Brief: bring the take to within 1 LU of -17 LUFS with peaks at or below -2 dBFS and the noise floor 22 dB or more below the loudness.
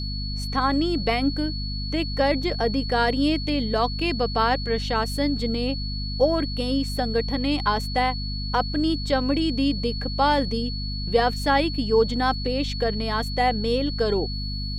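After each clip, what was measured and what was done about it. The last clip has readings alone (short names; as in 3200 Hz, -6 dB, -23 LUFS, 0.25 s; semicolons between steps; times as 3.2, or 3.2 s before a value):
hum 50 Hz; harmonics up to 250 Hz; hum level -27 dBFS; steady tone 4400 Hz; tone level -33 dBFS; loudness -24.0 LUFS; peak -8.0 dBFS; loudness target -17.0 LUFS
-> de-hum 50 Hz, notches 5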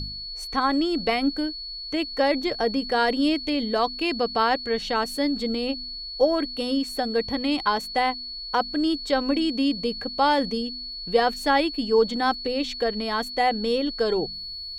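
hum none; steady tone 4400 Hz; tone level -33 dBFS
-> notch 4400 Hz, Q 30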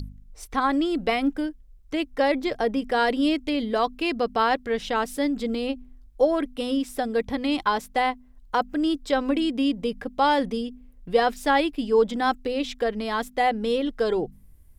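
steady tone none; loudness -25.0 LUFS; peak -9.0 dBFS; loudness target -17.0 LUFS
-> gain +8 dB; limiter -2 dBFS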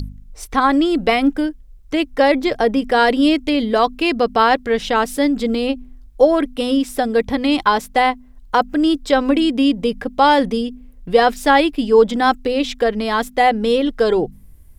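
loudness -17.0 LUFS; peak -2.0 dBFS; noise floor -43 dBFS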